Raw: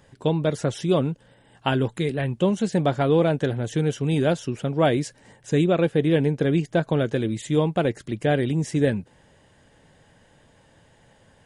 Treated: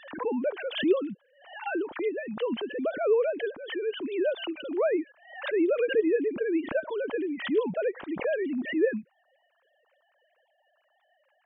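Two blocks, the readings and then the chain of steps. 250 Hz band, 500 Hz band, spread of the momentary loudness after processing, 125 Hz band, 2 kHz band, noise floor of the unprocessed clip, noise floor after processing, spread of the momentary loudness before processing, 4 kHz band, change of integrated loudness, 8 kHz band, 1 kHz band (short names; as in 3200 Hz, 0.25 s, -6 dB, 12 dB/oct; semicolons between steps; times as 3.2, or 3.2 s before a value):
-7.0 dB, -3.0 dB, 8 LU, under -25 dB, -2.5 dB, -58 dBFS, -71 dBFS, 6 LU, -5.0 dB, -5.5 dB, under -40 dB, -9.5 dB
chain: sine-wave speech; backwards sustainer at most 100 dB/s; gain -6.5 dB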